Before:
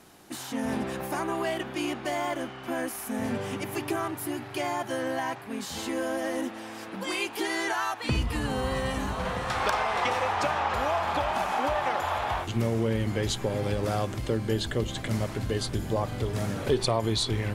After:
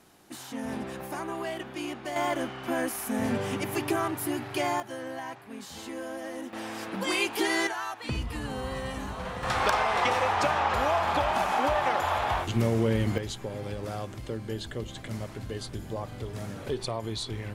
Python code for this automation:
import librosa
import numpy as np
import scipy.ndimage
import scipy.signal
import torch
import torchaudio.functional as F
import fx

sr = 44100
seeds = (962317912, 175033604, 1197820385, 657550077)

y = fx.gain(x, sr, db=fx.steps((0.0, -4.5), (2.16, 2.0), (4.8, -7.0), (6.53, 3.0), (7.67, -5.0), (9.43, 1.5), (13.18, -7.0)))